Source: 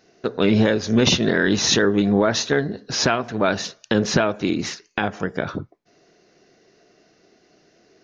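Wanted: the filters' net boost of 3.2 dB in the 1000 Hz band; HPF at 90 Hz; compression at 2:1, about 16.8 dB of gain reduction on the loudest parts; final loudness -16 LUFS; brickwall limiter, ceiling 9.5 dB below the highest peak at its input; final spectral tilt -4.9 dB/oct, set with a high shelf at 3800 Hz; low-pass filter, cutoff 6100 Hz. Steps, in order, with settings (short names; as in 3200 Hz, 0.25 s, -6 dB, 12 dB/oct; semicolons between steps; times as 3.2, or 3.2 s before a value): HPF 90 Hz; LPF 6100 Hz; bell 1000 Hz +5.5 dB; high shelf 3800 Hz -9 dB; compressor 2:1, threshold -45 dBFS; gain +22.5 dB; limiter -3.5 dBFS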